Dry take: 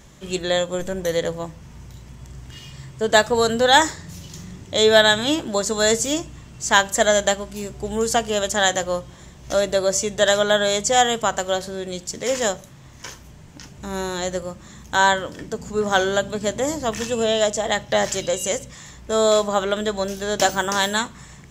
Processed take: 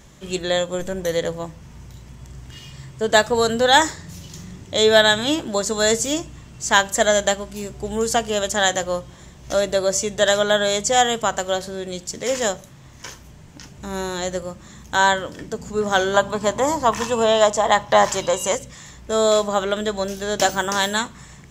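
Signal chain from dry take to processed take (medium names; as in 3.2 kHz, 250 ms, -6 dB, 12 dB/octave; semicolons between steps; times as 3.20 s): 16.14–18.55 s: peaking EQ 1 kHz +15 dB 0.72 oct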